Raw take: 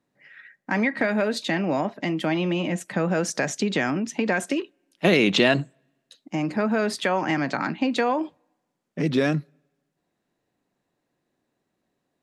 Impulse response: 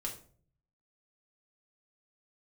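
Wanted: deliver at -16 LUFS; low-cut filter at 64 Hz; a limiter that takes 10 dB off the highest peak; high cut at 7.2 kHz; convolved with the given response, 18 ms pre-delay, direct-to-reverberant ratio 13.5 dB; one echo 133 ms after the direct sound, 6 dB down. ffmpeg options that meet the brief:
-filter_complex "[0:a]highpass=64,lowpass=7200,alimiter=limit=0.168:level=0:latency=1,aecho=1:1:133:0.501,asplit=2[s0][s1];[1:a]atrim=start_sample=2205,adelay=18[s2];[s1][s2]afir=irnorm=-1:irlink=0,volume=0.211[s3];[s0][s3]amix=inputs=2:normalize=0,volume=2.99"

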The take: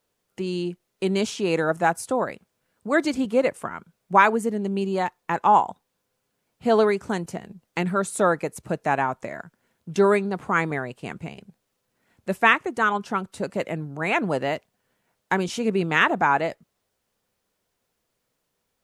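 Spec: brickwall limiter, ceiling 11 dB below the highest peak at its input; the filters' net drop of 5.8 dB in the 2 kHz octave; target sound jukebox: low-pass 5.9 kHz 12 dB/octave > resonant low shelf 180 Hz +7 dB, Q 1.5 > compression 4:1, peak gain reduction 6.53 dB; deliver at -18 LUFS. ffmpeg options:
-af "equalizer=f=2000:t=o:g=-7.5,alimiter=limit=0.141:level=0:latency=1,lowpass=5900,lowshelf=f=180:t=q:w=1.5:g=7,acompressor=threshold=0.0447:ratio=4,volume=5.31"

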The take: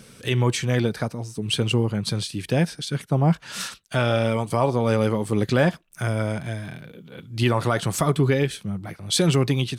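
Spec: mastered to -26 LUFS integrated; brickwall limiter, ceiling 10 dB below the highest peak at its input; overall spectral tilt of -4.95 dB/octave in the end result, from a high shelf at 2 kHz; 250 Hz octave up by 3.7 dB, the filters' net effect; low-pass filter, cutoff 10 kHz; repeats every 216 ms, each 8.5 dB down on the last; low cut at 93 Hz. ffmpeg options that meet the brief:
-af "highpass=93,lowpass=10000,equalizer=f=250:t=o:g=5,highshelf=f=2000:g=4.5,alimiter=limit=0.2:level=0:latency=1,aecho=1:1:216|432|648|864:0.376|0.143|0.0543|0.0206,volume=0.891"

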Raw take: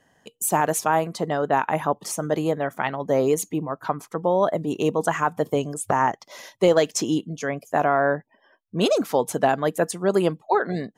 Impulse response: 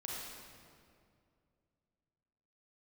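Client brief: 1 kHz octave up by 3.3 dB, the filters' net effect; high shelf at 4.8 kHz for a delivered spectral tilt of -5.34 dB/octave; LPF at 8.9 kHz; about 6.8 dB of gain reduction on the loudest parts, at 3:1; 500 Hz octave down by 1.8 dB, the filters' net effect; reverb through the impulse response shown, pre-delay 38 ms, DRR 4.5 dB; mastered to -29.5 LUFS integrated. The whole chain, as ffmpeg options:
-filter_complex "[0:a]lowpass=8900,equalizer=f=500:t=o:g=-4,equalizer=f=1000:t=o:g=6,highshelf=f=4800:g=-6.5,acompressor=threshold=0.0794:ratio=3,asplit=2[s0][s1];[1:a]atrim=start_sample=2205,adelay=38[s2];[s1][s2]afir=irnorm=-1:irlink=0,volume=0.562[s3];[s0][s3]amix=inputs=2:normalize=0,volume=0.708"

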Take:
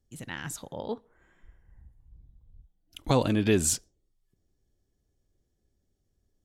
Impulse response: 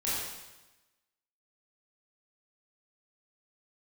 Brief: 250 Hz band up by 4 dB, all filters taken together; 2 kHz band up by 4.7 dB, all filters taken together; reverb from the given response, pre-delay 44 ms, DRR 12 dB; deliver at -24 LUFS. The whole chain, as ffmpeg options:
-filter_complex "[0:a]equalizer=f=250:t=o:g=5,equalizer=f=2000:t=o:g=6,asplit=2[s0][s1];[1:a]atrim=start_sample=2205,adelay=44[s2];[s1][s2]afir=irnorm=-1:irlink=0,volume=0.112[s3];[s0][s3]amix=inputs=2:normalize=0,volume=1.26"

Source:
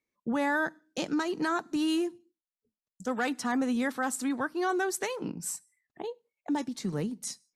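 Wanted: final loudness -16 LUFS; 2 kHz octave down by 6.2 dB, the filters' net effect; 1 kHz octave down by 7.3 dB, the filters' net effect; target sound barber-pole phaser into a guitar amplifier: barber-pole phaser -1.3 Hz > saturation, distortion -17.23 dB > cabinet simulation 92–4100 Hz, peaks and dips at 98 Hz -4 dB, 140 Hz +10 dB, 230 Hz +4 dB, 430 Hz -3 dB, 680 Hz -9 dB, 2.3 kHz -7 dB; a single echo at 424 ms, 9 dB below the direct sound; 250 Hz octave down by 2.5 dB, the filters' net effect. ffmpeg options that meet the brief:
-filter_complex "[0:a]equalizer=f=250:t=o:g=-4.5,equalizer=f=1000:t=o:g=-5,equalizer=f=2000:t=o:g=-4.5,aecho=1:1:424:0.355,asplit=2[s0][s1];[s1]afreqshift=-1.3[s2];[s0][s2]amix=inputs=2:normalize=1,asoftclip=threshold=0.0299,highpass=92,equalizer=f=98:t=q:w=4:g=-4,equalizer=f=140:t=q:w=4:g=10,equalizer=f=230:t=q:w=4:g=4,equalizer=f=430:t=q:w=4:g=-3,equalizer=f=680:t=q:w=4:g=-9,equalizer=f=2300:t=q:w=4:g=-7,lowpass=f=4100:w=0.5412,lowpass=f=4100:w=1.3066,volume=16.8"

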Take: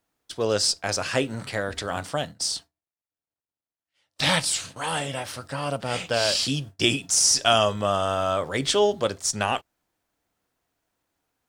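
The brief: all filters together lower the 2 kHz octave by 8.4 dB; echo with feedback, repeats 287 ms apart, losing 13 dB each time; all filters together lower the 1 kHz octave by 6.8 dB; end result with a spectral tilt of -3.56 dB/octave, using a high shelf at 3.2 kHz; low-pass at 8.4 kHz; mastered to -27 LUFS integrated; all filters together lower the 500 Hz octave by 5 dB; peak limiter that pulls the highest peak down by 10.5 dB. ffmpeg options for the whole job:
-af "lowpass=8400,equalizer=f=500:t=o:g=-4,equalizer=f=1000:t=o:g=-5.5,equalizer=f=2000:t=o:g=-7.5,highshelf=f=3200:g=-5.5,alimiter=limit=0.106:level=0:latency=1,aecho=1:1:287|574|861:0.224|0.0493|0.0108,volume=1.68"

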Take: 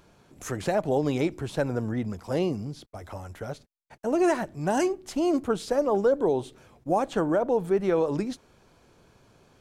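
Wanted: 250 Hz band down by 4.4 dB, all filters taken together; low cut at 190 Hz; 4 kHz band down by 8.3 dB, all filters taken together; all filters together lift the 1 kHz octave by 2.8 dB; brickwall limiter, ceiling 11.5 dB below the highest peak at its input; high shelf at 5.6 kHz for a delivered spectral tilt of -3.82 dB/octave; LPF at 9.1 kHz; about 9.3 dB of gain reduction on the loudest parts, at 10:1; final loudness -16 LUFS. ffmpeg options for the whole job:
-af "highpass=190,lowpass=9100,equalizer=f=250:t=o:g=-5.5,equalizer=f=1000:t=o:g=5,equalizer=f=4000:t=o:g=-9,highshelf=f=5600:g=-7,acompressor=threshold=0.0398:ratio=10,volume=15.8,alimiter=limit=0.531:level=0:latency=1"

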